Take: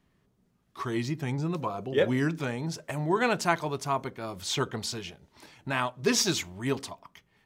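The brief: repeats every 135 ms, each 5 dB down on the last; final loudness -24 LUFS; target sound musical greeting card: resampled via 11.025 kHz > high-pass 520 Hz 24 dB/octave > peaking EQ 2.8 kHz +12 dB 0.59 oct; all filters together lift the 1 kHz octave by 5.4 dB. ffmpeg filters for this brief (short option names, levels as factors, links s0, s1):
-af "equalizer=f=1000:t=o:g=6,aecho=1:1:135|270|405|540|675|810|945:0.562|0.315|0.176|0.0988|0.0553|0.031|0.0173,aresample=11025,aresample=44100,highpass=f=520:w=0.5412,highpass=f=520:w=1.3066,equalizer=f=2800:t=o:w=0.59:g=12,volume=1.33"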